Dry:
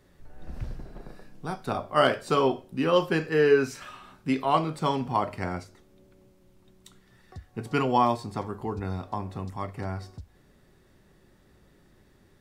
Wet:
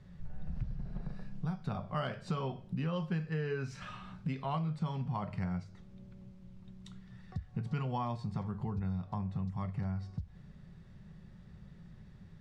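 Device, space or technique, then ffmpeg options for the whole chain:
jukebox: -af "lowpass=5.4k,lowshelf=f=230:t=q:w=3:g=8.5,acompressor=threshold=-32dB:ratio=4,volume=-2.5dB"

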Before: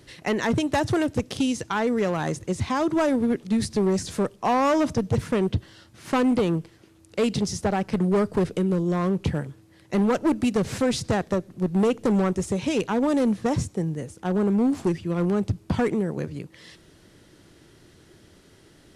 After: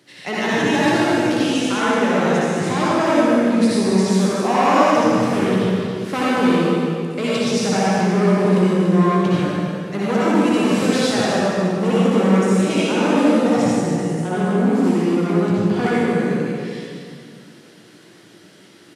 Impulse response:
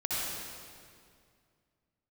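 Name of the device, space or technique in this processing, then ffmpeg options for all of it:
stadium PA: -filter_complex "[0:a]highpass=f=150:w=0.5412,highpass=f=150:w=1.3066,equalizer=f=2.4k:t=o:w=2.3:g=4,asplit=2[a][b];[b]adelay=17,volume=-11dB[c];[a][c]amix=inputs=2:normalize=0,aecho=1:1:151.6|285.7:0.355|0.251[d];[1:a]atrim=start_sample=2205[e];[d][e]afir=irnorm=-1:irlink=0,volume=-2dB"

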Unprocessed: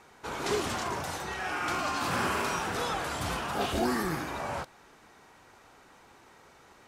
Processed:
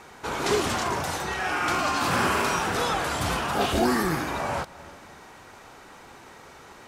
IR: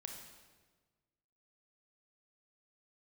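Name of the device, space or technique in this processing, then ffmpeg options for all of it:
ducked reverb: -filter_complex "[0:a]asplit=3[a][b][c];[1:a]atrim=start_sample=2205[d];[b][d]afir=irnorm=-1:irlink=0[e];[c]apad=whole_len=303194[f];[e][f]sidechaincompress=threshold=-48dB:ratio=8:attack=16:release=205,volume=-1dB[g];[a][g]amix=inputs=2:normalize=0,volume=5.5dB"

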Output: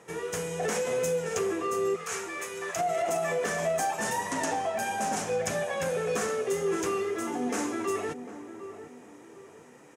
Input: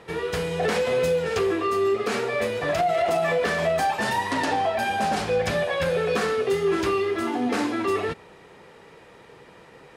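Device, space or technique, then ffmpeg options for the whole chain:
budget condenser microphone: -filter_complex "[0:a]asettb=1/sr,asplit=3[a][b][c];[a]atrim=end=1.964[d];[b]atrim=start=1.96:end=2.76,asetpts=PTS-STARTPTS,afade=t=in:d=0.004:c=qsin,afade=t=out:st=0.796:d=0.004:c=qsin,highpass=f=920:w=0.5412,highpass=f=920:w=1.3066[e];[c]atrim=start=2.756[f];[d][e]acrossfade=d=0.004:c1=hsin:c2=qsin[g];[g][f]acrossfade=d=0.004:c1=qsin:c2=hsin,highpass=120,highshelf=f=5.3k:t=q:w=3:g=7,asplit=2[h][i];[i]adelay=750,lowpass=f=950:p=1,volume=-10.5dB,asplit=2[j][k];[k]adelay=750,lowpass=f=950:p=1,volume=0.4,asplit=2[l][m];[m]adelay=750,lowpass=f=950:p=1,volume=0.4,asplit=2[n][o];[o]adelay=750,lowpass=f=950:p=1,volume=0.4[p];[h][j][l][n][p]amix=inputs=5:normalize=0,volume=-6dB"

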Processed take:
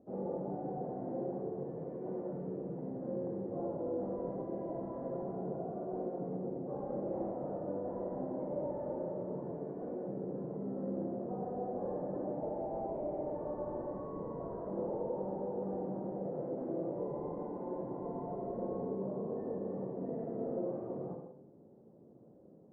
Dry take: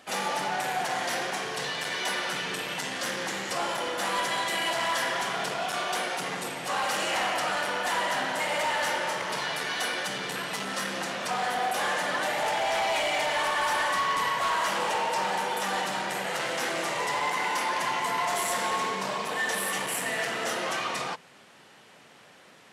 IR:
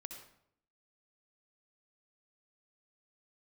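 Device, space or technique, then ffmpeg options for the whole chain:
next room: -filter_complex "[0:a]lowpass=f=480:w=0.5412,lowpass=f=480:w=1.3066[a];[1:a]atrim=start_sample=2205[b];[a][b]afir=irnorm=-1:irlink=0,volume=6dB"

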